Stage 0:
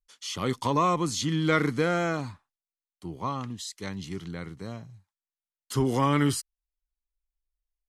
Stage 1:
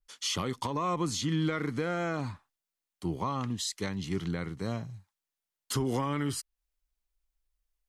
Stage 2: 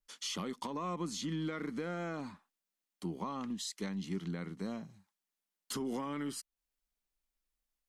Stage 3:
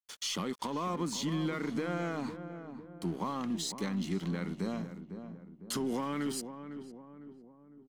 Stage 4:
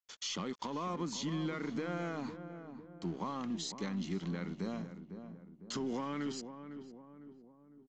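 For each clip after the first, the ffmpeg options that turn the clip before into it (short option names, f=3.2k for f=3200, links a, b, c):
-af "acompressor=threshold=-26dB:ratio=6,alimiter=level_in=1.5dB:limit=-24dB:level=0:latency=1:release=402,volume=-1.5dB,adynamicequalizer=threshold=0.00224:dfrequency=3500:dqfactor=0.7:tfrequency=3500:tqfactor=0.7:attack=5:release=100:ratio=0.375:range=2:mode=cutabove:tftype=highshelf,volume=5dB"
-af "lowshelf=f=150:t=q:w=3:g=-8,aeval=exprs='0.133*(cos(1*acos(clip(val(0)/0.133,-1,1)))-cos(1*PI/2))+0.00119*(cos(6*acos(clip(val(0)/0.133,-1,1)))-cos(6*PI/2))':c=same,acompressor=threshold=-45dB:ratio=1.5,volume=-1.5dB"
-filter_complex "[0:a]asplit=2[a][b];[b]alimiter=level_in=12dB:limit=-24dB:level=0:latency=1:release=22,volume=-12dB,volume=-1.5dB[c];[a][c]amix=inputs=2:normalize=0,aeval=exprs='sgn(val(0))*max(abs(val(0))-0.00237,0)':c=same,asplit=2[d][e];[e]adelay=504,lowpass=f=1.1k:p=1,volume=-9dB,asplit=2[f][g];[g]adelay=504,lowpass=f=1.1k:p=1,volume=0.51,asplit=2[h][i];[i]adelay=504,lowpass=f=1.1k:p=1,volume=0.51,asplit=2[j][k];[k]adelay=504,lowpass=f=1.1k:p=1,volume=0.51,asplit=2[l][m];[m]adelay=504,lowpass=f=1.1k:p=1,volume=0.51,asplit=2[n][o];[o]adelay=504,lowpass=f=1.1k:p=1,volume=0.51[p];[d][f][h][j][l][n][p]amix=inputs=7:normalize=0,volume=1.5dB"
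-af "aresample=16000,aresample=44100,volume=-3.5dB"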